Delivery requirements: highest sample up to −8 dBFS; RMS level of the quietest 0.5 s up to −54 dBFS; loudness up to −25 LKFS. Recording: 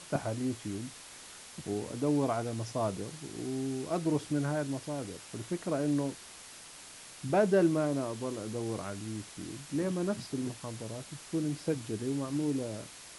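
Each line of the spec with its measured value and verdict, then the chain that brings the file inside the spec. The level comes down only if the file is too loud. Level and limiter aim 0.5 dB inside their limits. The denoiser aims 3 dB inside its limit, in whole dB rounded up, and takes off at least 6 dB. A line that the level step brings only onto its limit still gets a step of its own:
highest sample −15.0 dBFS: in spec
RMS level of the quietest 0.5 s −50 dBFS: out of spec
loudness −34.0 LKFS: in spec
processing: broadband denoise 7 dB, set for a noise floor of −50 dBFS

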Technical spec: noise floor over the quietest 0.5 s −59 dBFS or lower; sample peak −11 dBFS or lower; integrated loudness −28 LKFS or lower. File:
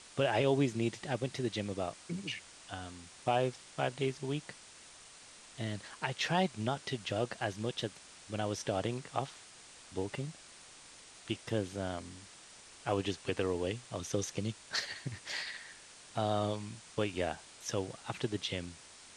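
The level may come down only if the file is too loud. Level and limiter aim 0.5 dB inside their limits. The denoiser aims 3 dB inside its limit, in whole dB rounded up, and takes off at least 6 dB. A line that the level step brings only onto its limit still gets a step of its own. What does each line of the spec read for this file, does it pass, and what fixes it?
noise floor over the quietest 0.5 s −55 dBFS: out of spec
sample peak −17.0 dBFS: in spec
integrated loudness −36.5 LKFS: in spec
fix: broadband denoise 7 dB, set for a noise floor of −55 dBFS

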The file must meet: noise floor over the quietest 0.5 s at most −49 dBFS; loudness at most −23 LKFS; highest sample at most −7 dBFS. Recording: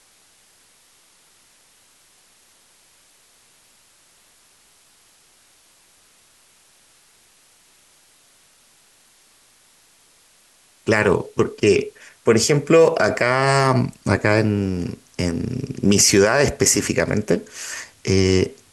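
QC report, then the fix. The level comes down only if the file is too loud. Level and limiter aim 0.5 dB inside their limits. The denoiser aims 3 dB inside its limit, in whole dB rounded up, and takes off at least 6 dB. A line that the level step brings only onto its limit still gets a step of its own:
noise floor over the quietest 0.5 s −55 dBFS: in spec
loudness −18.5 LKFS: out of spec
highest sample −4.5 dBFS: out of spec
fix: level −5 dB

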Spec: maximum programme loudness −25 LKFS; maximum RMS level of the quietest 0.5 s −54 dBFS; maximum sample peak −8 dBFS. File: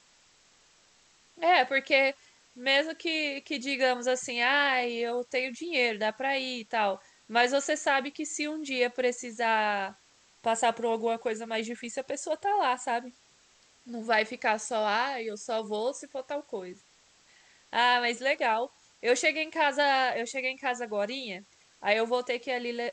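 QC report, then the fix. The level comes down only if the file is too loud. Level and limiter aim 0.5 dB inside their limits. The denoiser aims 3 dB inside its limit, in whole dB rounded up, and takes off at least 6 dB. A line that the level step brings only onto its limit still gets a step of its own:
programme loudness −28.5 LKFS: in spec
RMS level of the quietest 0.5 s −62 dBFS: in spec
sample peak −10.5 dBFS: in spec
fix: no processing needed

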